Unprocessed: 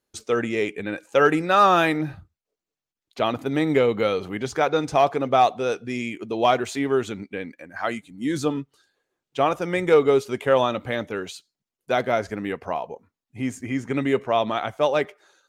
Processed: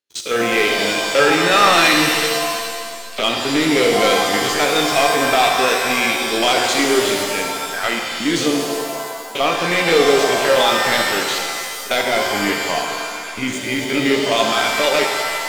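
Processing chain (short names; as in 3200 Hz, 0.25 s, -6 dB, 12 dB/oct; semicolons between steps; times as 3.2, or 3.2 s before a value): stepped spectrum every 50 ms; weighting filter D; sample leveller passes 3; shimmer reverb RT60 1.8 s, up +7 st, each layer -2 dB, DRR 2.5 dB; gain -6 dB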